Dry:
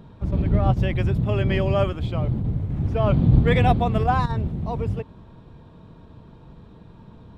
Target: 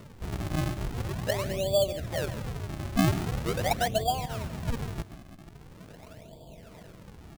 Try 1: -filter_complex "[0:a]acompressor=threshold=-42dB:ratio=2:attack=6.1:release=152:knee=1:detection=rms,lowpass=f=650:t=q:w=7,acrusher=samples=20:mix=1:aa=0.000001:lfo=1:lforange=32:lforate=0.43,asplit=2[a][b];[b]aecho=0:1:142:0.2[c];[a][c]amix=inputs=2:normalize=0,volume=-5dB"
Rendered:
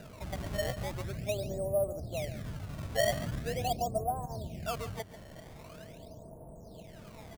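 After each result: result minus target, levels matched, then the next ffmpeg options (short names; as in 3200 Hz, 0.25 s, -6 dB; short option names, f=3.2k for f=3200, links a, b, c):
compressor: peak gain reduction +5 dB; decimation with a swept rate: distortion -5 dB
-filter_complex "[0:a]acompressor=threshold=-32dB:ratio=2:attack=6.1:release=152:knee=1:detection=rms,lowpass=f=650:t=q:w=7,acrusher=samples=20:mix=1:aa=0.000001:lfo=1:lforange=32:lforate=0.43,asplit=2[a][b];[b]aecho=0:1:142:0.2[c];[a][c]amix=inputs=2:normalize=0,volume=-5dB"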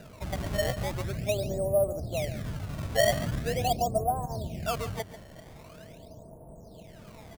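decimation with a swept rate: distortion -5 dB
-filter_complex "[0:a]acompressor=threshold=-32dB:ratio=2:attack=6.1:release=152:knee=1:detection=rms,lowpass=f=650:t=q:w=7,acrusher=samples=53:mix=1:aa=0.000001:lfo=1:lforange=84.8:lforate=0.43,asplit=2[a][b];[b]aecho=0:1:142:0.2[c];[a][c]amix=inputs=2:normalize=0,volume=-5dB"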